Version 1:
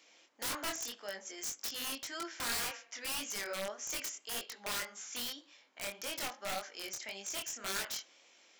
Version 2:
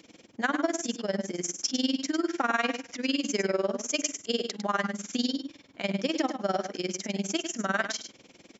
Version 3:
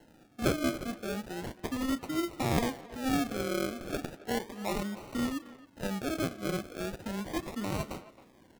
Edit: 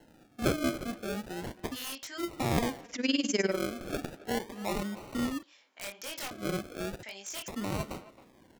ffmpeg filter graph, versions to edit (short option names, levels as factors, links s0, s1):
-filter_complex "[0:a]asplit=3[s0][s1][s2];[2:a]asplit=5[s3][s4][s5][s6][s7];[s3]atrim=end=1.77[s8];[s0]atrim=start=1.71:end=2.23[s9];[s4]atrim=start=2.17:end=2.95[s10];[1:a]atrim=start=2.79:end=3.63[s11];[s5]atrim=start=3.47:end=5.432[s12];[s1]atrim=start=5.428:end=6.312[s13];[s6]atrim=start=6.308:end=7.032[s14];[s2]atrim=start=7.028:end=7.482[s15];[s7]atrim=start=7.478[s16];[s8][s9]acrossfade=d=0.06:c1=tri:c2=tri[s17];[s17][s10]acrossfade=d=0.06:c1=tri:c2=tri[s18];[s18][s11]acrossfade=d=0.16:c1=tri:c2=tri[s19];[s19][s12]acrossfade=d=0.16:c1=tri:c2=tri[s20];[s20][s13]acrossfade=d=0.004:c1=hsin:c2=hsin[s21];[s21][s14]acrossfade=d=0.004:c1=hsin:c2=hsin[s22];[s22][s15]acrossfade=d=0.004:c1=hsin:c2=hsin[s23];[s23][s16]acrossfade=d=0.004:c1=hsin:c2=hsin"